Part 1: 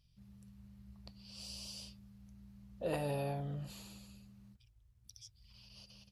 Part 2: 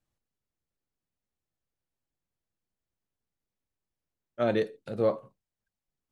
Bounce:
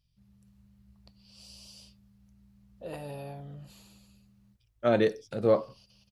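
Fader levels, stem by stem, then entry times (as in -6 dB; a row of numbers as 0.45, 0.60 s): -3.5, +2.5 dB; 0.00, 0.45 s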